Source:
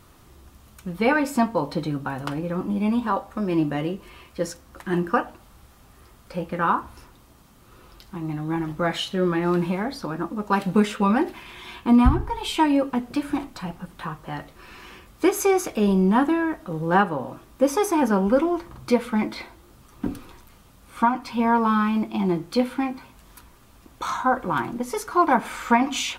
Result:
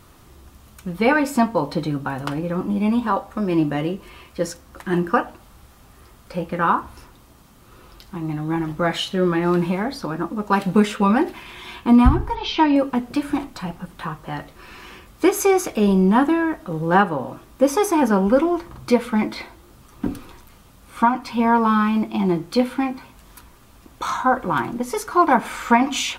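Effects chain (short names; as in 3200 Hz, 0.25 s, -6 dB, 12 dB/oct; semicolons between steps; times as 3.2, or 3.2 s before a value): 12.35–12.76 steep low-pass 5900 Hz 72 dB/oct; gain +3 dB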